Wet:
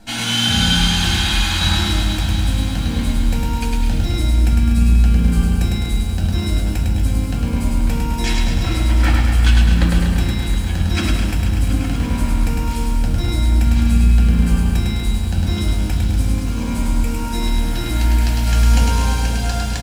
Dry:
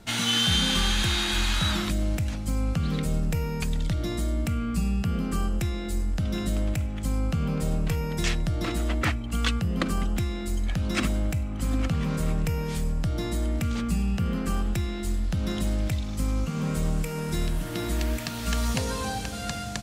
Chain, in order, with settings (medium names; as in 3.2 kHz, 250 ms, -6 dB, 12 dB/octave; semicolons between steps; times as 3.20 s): feedback delay 104 ms, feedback 54%, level -3 dB; reverberation RT60 0.40 s, pre-delay 4 ms, DRR 0 dB; bit-crushed delay 241 ms, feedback 80%, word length 7-bit, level -9.5 dB